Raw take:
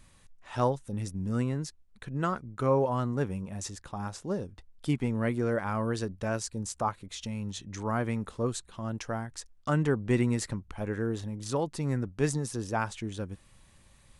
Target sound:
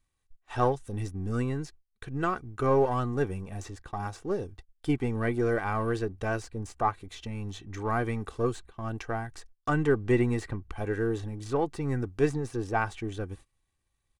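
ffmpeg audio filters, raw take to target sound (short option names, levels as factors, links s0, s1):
-filter_complex "[0:a]aeval=exprs='if(lt(val(0),0),0.708*val(0),val(0))':c=same,agate=range=0.0708:threshold=0.00355:ratio=16:detection=peak,aecho=1:1:2.6:0.49,acrossover=split=2900[s0][s1];[s1]acompressor=threshold=0.00178:ratio=4[s2];[s0][s2]amix=inputs=2:normalize=0,volume=1.41"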